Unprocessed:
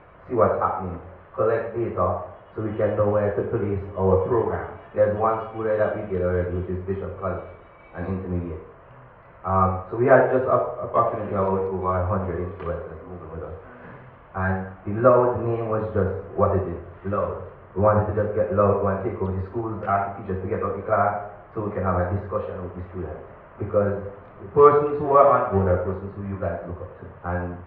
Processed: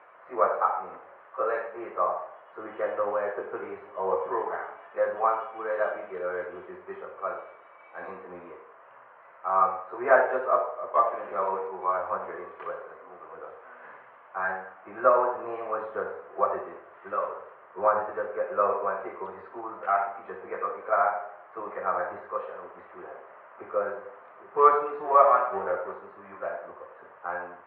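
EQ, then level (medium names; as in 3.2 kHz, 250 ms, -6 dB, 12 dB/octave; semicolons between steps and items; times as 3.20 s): band-pass 740–2300 Hz; 0.0 dB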